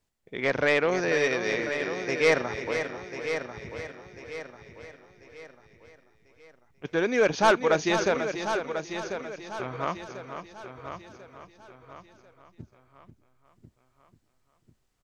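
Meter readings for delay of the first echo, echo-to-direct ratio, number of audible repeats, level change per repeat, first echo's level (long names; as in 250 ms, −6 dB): 489 ms, −5.0 dB, 10, repeats not evenly spaced, −9.0 dB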